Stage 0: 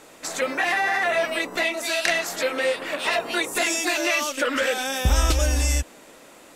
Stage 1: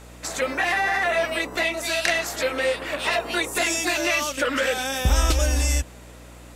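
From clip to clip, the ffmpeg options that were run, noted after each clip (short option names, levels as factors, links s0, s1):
-af "aeval=exprs='val(0)+0.00631*(sin(2*PI*60*n/s)+sin(2*PI*2*60*n/s)/2+sin(2*PI*3*60*n/s)/3+sin(2*PI*4*60*n/s)/4+sin(2*PI*5*60*n/s)/5)':c=same"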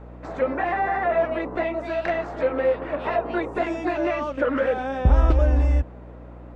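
-af "lowpass=1000,volume=1.5"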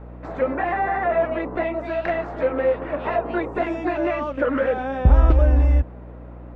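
-af "bass=f=250:g=2,treble=f=4000:g=-9,volume=1.12"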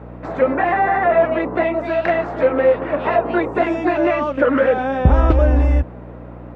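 -af "highpass=78,volume=2"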